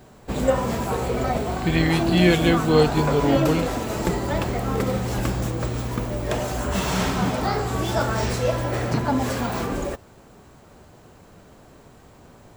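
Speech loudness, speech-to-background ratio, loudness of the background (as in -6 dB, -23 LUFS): -21.0 LUFS, 3.5 dB, -24.5 LUFS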